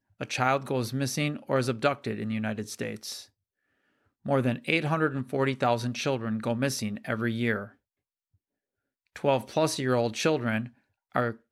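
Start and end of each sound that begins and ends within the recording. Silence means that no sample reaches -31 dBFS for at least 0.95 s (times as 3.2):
4.26–7.64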